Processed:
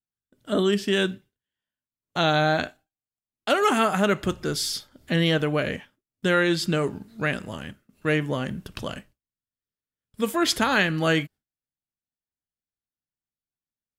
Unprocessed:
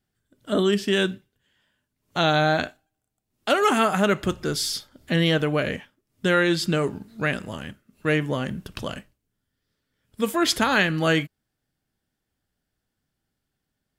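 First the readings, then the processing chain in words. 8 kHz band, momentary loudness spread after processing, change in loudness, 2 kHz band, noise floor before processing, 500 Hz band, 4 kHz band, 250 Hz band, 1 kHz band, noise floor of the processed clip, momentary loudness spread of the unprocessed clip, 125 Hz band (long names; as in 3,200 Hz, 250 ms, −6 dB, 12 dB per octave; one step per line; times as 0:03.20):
−1.0 dB, 14 LU, −1.0 dB, −1.0 dB, −81 dBFS, −1.0 dB, −1.0 dB, −1.0 dB, −1.0 dB, below −85 dBFS, 14 LU, −1.0 dB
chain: noise gate with hold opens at −49 dBFS
level −1 dB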